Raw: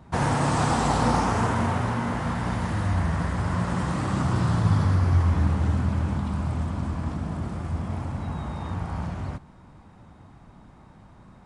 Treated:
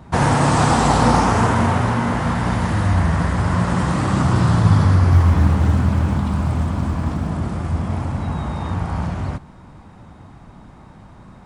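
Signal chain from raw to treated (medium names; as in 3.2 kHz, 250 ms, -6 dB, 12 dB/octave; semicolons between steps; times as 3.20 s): 5.12–7.31 s: short-mantissa float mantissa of 6-bit; trim +7.5 dB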